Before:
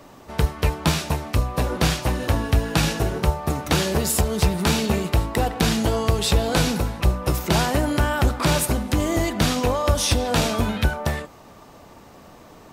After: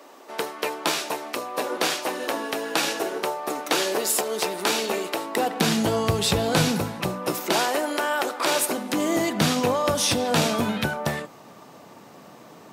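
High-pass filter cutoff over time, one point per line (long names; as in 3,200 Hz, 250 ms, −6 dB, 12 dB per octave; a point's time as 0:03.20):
high-pass filter 24 dB per octave
0:05.25 310 Hz
0:06.02 98 Hz
0:06.71 98 Hz
0:07.76 350 Hz
0:08.44 350 Hz
0:09.45 130 Hz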